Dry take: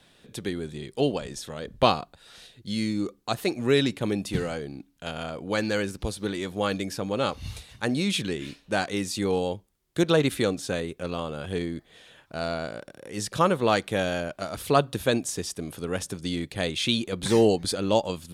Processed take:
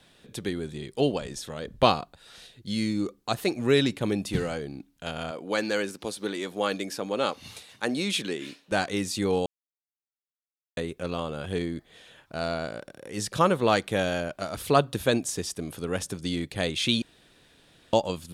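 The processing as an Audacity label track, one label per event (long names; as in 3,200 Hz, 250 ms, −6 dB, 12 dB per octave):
5.310000	8.720000	high-pass filter 240 Hz
9.460000	10.770000	silence
17.020000	17.930000	fill with room tone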